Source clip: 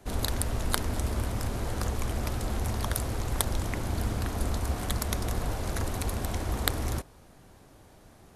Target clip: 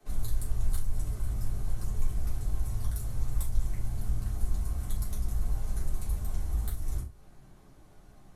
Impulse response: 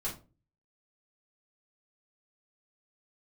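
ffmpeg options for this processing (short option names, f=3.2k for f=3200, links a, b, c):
-filter_complex "[0:a]bandreject=f=480:w=12,acrossover=split=120|6500[a][b][c];[b]acompressor=threshold=-45dB:ratio=5[d];[c]asoftclip=type=tanh:threshold=-19dB[e];[a][d][e]amix=inputs=3:normalize=0[f];[1:a]atrim=start_sample=2205,afade=t=out:st=0.16:d=0.01,atrim=end_sample=7497,asetrate=42777,aresample=44100[g];[f][g]afir=irnorm=-1:irlink=0,volume=-7.5dB"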